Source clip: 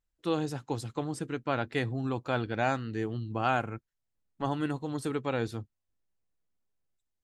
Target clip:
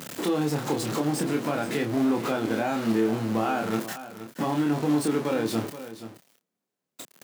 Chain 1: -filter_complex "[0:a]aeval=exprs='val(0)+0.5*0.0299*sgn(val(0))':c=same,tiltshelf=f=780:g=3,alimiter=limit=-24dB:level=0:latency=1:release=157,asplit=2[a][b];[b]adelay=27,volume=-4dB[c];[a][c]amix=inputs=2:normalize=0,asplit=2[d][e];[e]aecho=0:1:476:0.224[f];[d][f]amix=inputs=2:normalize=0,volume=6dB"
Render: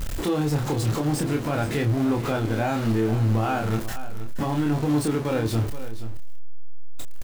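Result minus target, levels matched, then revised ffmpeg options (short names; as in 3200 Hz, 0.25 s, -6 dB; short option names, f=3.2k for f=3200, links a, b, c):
125 Hz band +8.0 dB
-filter_complex "[0:a]aeval=exprs='val(0)+0.5*0.0299*sgn(val(0))':c=same,highpass=f=170:w=0.5412,highpass=f=170:w=1.3066,tiltshelf=f=780:g=3,alimiter=limit=-24dB:level=0:latency=1:release=157,asplit=2[a][b];[b]adelay=27,volume=-4dB[c];[a][c]amix=inputs=2:normalize=0,asplit=2[d][e];[e]aecho=0:1:476:0.224[f];[d][f]amix=inputs=2:normalize=0,volume=6dB"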